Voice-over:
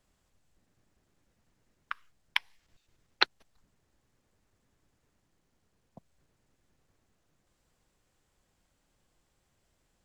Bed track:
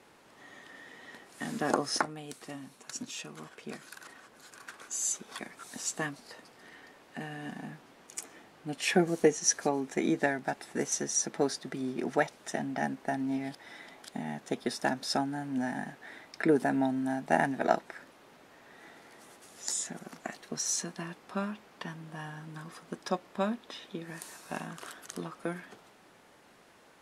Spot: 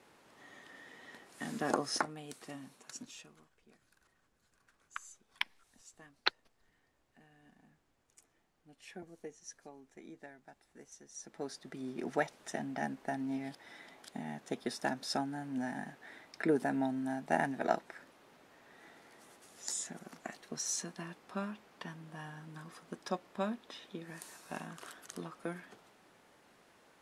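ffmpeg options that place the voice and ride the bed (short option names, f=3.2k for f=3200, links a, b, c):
-filter_complex "[0:a]adelay=3050,volume=-6dB[a];[1:a]volume=14.5dB,afade=t=out:st=2.66:d=0.83:silence=0.105925,afade=t=in:st=11.09:d=1.04:silence=0.11885[b];[a][b]amix=inputs=2:normalize=0"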